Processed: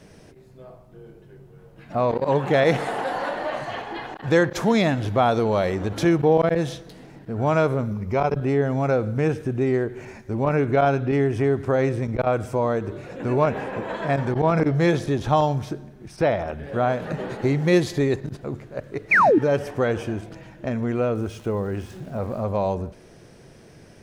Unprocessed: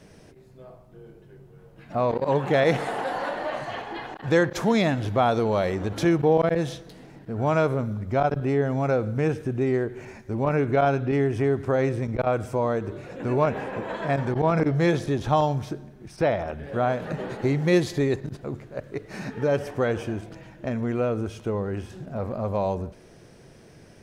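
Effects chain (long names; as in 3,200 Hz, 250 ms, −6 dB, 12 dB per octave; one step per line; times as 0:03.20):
0:07.91–0:08.35: EQ curve with evenly spaced ripples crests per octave 0.82, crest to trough 7 dB
0:19.11–0:19.39: sound drawn into the spectrogram fall 260–2,600 Hz −17 dBFS
0:21.15–0:22.45: centre clipping without the shift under −49 dBFS
level +2 dB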